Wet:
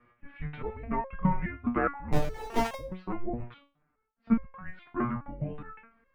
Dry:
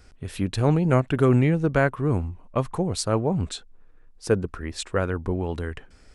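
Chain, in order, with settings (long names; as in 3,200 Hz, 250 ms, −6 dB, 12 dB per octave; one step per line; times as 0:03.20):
single-sideband voice off tune −230 Hz 200–2,600 Hz
0:02.12–0:02.75: power curve on the samples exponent 0.35
step-sequenced resonator 4.8 Hz 120–540 Hz
level +8 dB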